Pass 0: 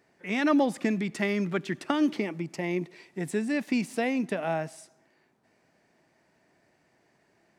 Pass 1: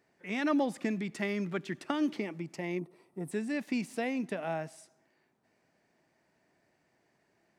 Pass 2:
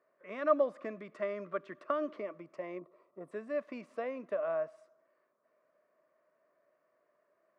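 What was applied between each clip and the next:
spectral gain 2.79–3.32, 1400–8000 Hz -13 dB; gain -5.5 dB
double band-pass 820 Hz, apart 0.9 oct; gain +8 dB

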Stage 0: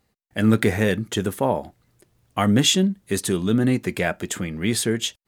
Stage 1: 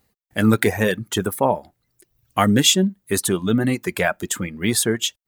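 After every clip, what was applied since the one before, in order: dynamic EQ 1100 Hz, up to +4 dB, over -36 dBFS, Q 0.73; reverb removal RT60 1 s; high shelf 11000 Hz +11.5 dB; gain +1.5 dB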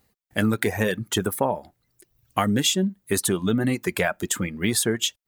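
compressor, threshold -18 dBFS, peak gain reduction 8 dB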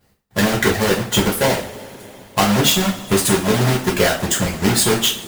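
half-waves squared off; two-slope reverb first 0.41 s, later 4 s, from -22 dB, DRR -5 dB; harmonic-percussive split harmonic -7 dB

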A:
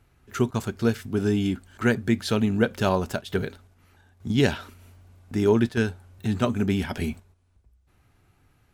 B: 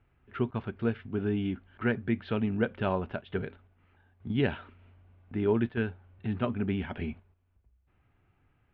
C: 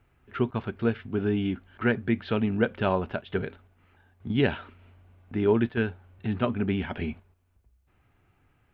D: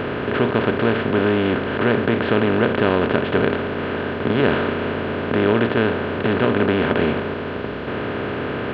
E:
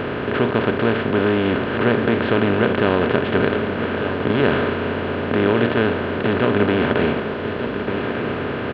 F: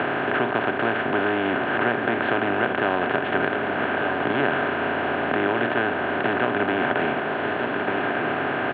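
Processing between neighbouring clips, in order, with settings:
steep low-pass 3100 Hz 36 dB/oct; gain -6.5 dB
tone controls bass -2 dB, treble +4 dB; gain +4.5 dB
per-bin compression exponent 0.2
echo 1.195 s -9.5 dB
crackle 51/s -34 dBFS; speaker cabinet 180–3400 Hz, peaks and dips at 210 Hz -8 dB, 470 Hz -8 dB, 740 Hz +9 dB, 1600 Hz +5 dB; three-band squash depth 70%; gain -3.5 dB

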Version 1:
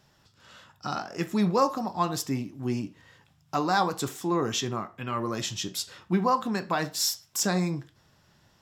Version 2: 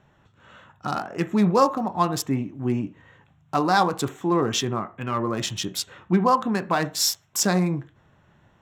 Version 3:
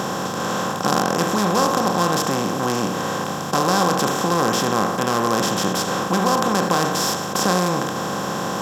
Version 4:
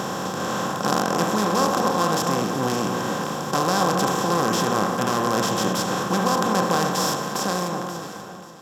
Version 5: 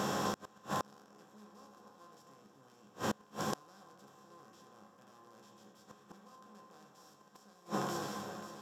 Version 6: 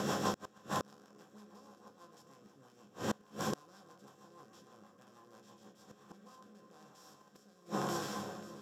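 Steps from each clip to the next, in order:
Wiener smoothing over 9 samples; gain +5 dB
per-bin compression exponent 0.2; gain -6.5 dB
ending faded out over 1.61 s; echo with dull and thin repeats by turns 0.268 s, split 1500 Hz, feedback 52%, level -6 dB; gain -3 dB
resonator bank C#2 fifth, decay 0.2 s; flipped gate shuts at -23 dBFS, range -31 dB; gain +1 dB
rotary speaker horn 6.3 Hz, later 1 Hz, at 5.67; gain +2.5 dB

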